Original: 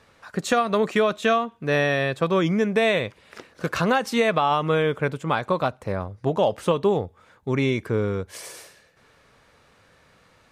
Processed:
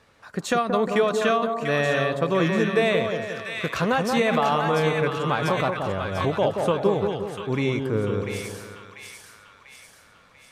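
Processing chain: split-band echo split 1200 Hz, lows 0.178 s, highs 0.693 s, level -4.5 dB; 4–6.31 backwards sustainer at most 51 dB/s; gain -2 dB

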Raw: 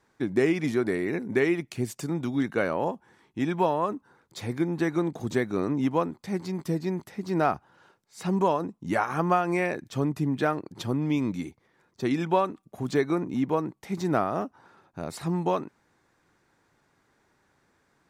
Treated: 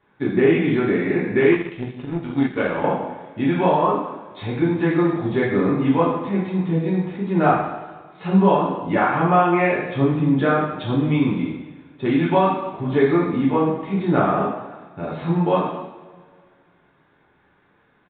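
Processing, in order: two-slope reverb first 0.91 s, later 2.4 s, DRR -7 dB; 1.52–2.84 power-law curve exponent 1.4; downsampling 8000 Hz

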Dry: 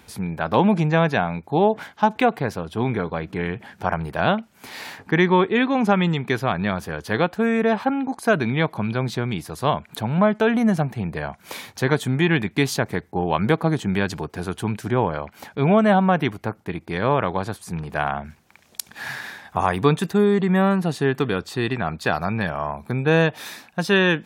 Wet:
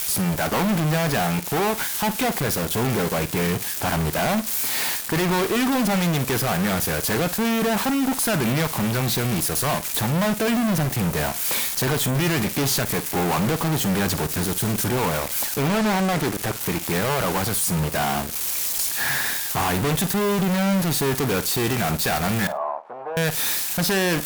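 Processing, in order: switching spikes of -15 dBFS; 14.24–14.79 bell 760 Hz -10 dB 1.2 oct; fuzz box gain 36 dB, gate -35 dBFS; 22.47–23.17 Butterworth band-pass 760 Hz, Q 1.4; flutter echo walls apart 8.8 m, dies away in 0.21 s; 15.69–16.6 Doppler distortion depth 0.57 ms; gain -6.5 dB

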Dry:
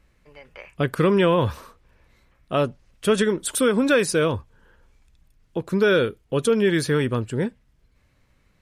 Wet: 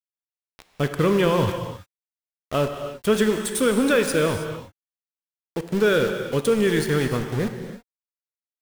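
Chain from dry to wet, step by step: sample gate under -27.5 dBFS; low shelf 62 Hz +8.5 dB; non-linear reverb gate 0.35 s flat, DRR 6 dB; gain -1.5 dB

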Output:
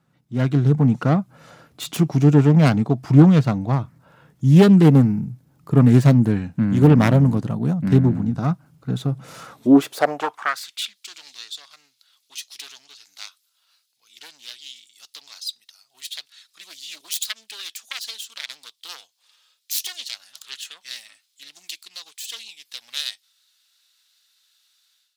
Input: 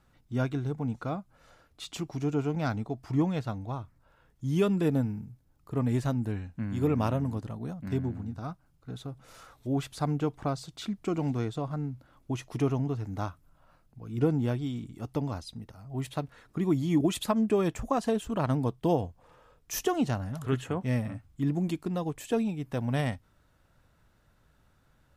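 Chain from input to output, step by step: self-modulated delay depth 0.31 ms; AGC gain up to 14 dB; high-pass sweep 150 Hz -> 4000 Hz, 9.45–10.99; gain -2 dB

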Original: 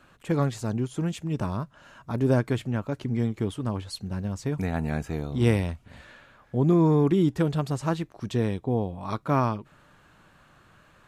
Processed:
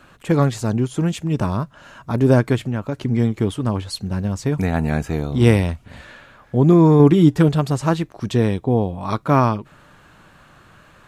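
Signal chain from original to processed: 2.55–2.98 compressor 4:1, threshold -28 dBFS, peak gain reduction 4.5 dB; 6.99–7.49 comb 6.8 ms, depth 47%; gain +8 dB

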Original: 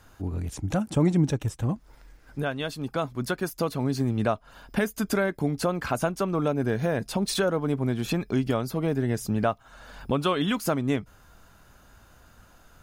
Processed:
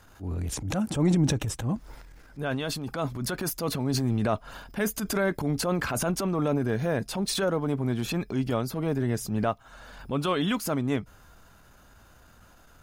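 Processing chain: transient shaper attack -8 dB, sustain +8 dB, from 6.59 s sustain +1 dB

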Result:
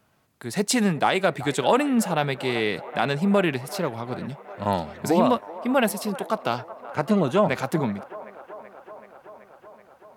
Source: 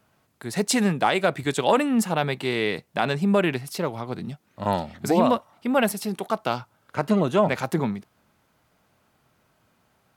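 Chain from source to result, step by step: band-limited delay 0.38 s, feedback 76%, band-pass 930 Hz, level -15 dB

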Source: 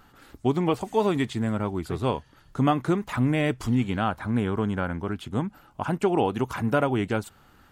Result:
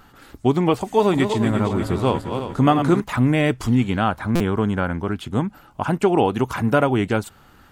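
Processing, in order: 0.81–3.01 regenerating reverse delay 0.176 s, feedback 66%, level -7 dB; stuck buffer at 4.35, samples 256, times 8; gain +5.5 dB

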